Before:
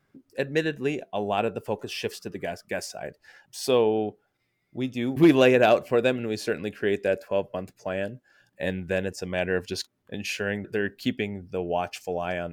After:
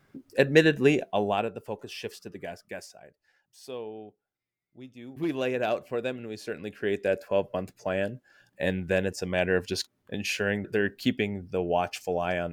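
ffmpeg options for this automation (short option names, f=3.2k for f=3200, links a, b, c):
-af "volume=23.5dB,afade=t=out:st=0.95:d=0.54:silence=0.251189,afade=t=out:st=2.61:d=0.45:silence=0.298538,afade=t=in:st=5.03:d=0.7:silence=0.398107,afade=t=in:st=6.43:d=1.1:silence=0.334965"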